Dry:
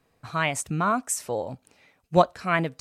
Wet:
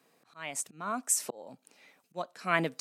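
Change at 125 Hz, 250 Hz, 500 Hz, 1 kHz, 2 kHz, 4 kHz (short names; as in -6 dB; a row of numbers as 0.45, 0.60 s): -14.0, -10.5, -12.0, -10.5, -6.0, -6.5 dB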